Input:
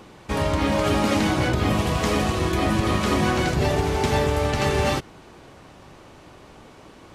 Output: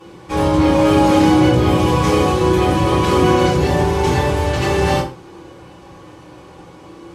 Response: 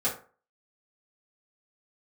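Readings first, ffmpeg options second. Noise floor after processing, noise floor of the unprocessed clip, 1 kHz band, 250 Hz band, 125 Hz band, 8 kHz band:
-41 dBFS, -47 dBFS, +7.5 dB, +8.5 dB, +6.5 dB, +3.5 dB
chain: -filter_complex "[1:a]atrim=start_sample=2205,afade=t=out:st=0.16:d=0.01,atrim=end_sample=7497,asetrate=29547,aresample=44100[a];[0:a][a]afir=irnorm=-1:irlink=0,volume=-6dB"

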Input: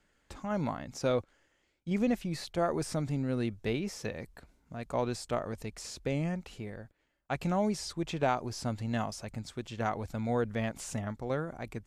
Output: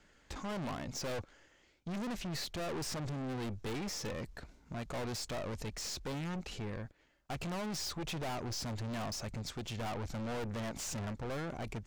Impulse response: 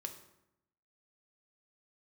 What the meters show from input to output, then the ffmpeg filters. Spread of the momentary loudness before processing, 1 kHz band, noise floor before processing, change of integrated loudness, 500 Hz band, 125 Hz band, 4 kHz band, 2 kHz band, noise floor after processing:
11 LU, -6.5 dB, -74 dBFS, -5.5 dB, -8.0 dB, -4.5 dB, +2.0 dB, -3.5 dB, -67 dBFS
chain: -af "highshelf=f=7.9k:t=q:w=1.5:g=-6,aeval=exprs='(tanh(158*val(0)+0.35)-tanh(0.35))/158':c=same,volume=7dB"

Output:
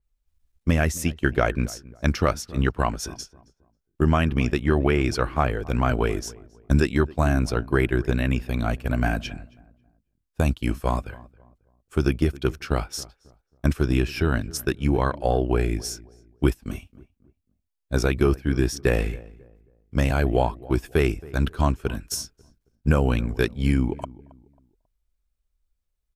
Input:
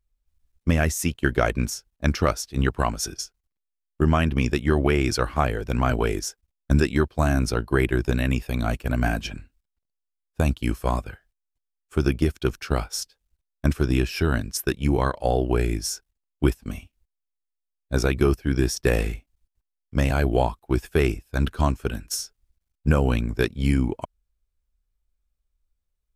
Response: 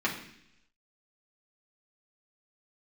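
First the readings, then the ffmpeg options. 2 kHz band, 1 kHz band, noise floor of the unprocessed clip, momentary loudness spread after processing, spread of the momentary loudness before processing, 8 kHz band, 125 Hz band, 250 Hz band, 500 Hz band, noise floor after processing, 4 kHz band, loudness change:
0.0 dB, 0.0 dB, -82 dBFS, 11 LU, 9 LU, -3.0 dB, 0.0 dB, 0.0 dB, 0.0 dB, -77 dBFS, -2.0 dB, 0.0 dB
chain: -filter_complex "[0:a]asplit=2[a][b];[b]adelay=271,lowpass=f=1.2k:p=1,volume=-20dB,asplit=2[c][d];[d]adelay=271,lowpass=f=1.2k:p=1,volume=0.33,asplit=2[e][f];[f]adelay=271,lowpass=f=1.2k:p=1,volume=0.33[g];[a][c][e][g]amix=inputs=4:normalize=0,adynamicequalizer=threshold=0.00631:dfrequency=4100:dqfactor=0.7:tfrequency=4100:tqfactor=0.7:attack=5:release=100:ratio=0.375:range=3.5:mode=cutabove:tftype=highshelf"

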